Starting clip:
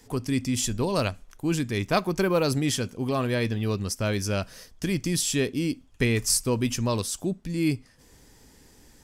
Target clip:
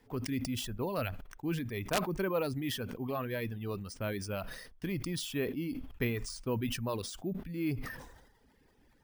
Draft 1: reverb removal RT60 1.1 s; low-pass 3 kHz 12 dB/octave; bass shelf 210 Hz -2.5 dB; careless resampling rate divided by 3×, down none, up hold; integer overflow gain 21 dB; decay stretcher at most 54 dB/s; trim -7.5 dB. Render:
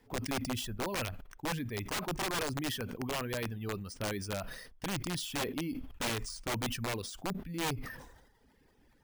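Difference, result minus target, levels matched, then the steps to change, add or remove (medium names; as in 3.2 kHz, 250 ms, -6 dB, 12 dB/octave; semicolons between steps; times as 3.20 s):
integer overflow: distortion +19 dB
change: integer overflow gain 14 dB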